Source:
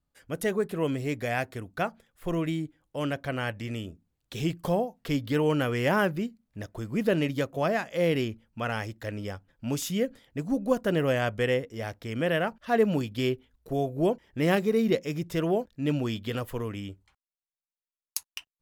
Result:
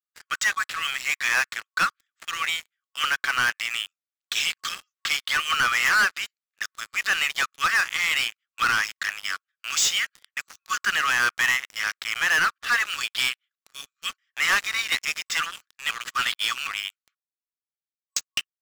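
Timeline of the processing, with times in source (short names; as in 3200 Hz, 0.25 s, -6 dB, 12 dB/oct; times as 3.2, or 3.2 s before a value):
15.91–16.67 reverse
whole clip: FFT band-pass 1100–8000 Hz; sample leveller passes 5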